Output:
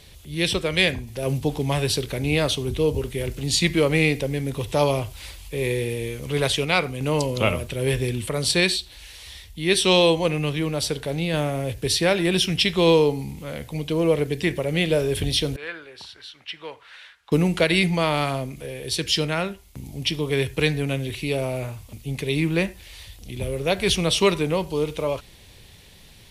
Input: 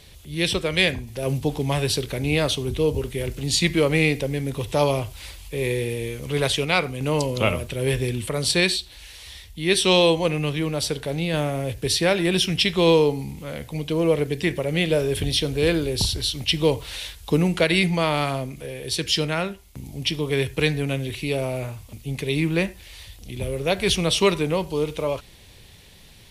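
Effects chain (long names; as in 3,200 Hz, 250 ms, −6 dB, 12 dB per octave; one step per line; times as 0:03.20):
0:15.56–0:17.32: resonant band-pass 1,500 Hz, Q 2.6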